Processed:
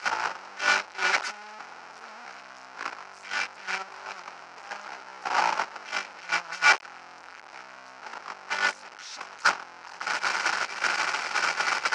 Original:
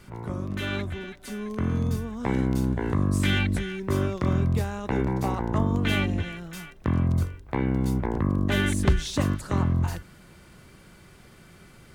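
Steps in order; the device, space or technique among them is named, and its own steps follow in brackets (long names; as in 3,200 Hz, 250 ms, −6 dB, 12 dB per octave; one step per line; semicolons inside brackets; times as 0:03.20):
dynamic equaliser 170 Hz, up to +6 dB, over −39 dBFS, Q 2.7
home computer beeper (sign of each sample alone; loudspeaker in its box 790–5,900 Hz, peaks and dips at 850 Hz +8 dB, 1,400 Hz +8 dB, 2,400 Hz +3 dB, 3,500 Hz −8 dB, 5,400 Hz +4 dB)
noise gate −24 dBFS, range −22 dB
level +8 dB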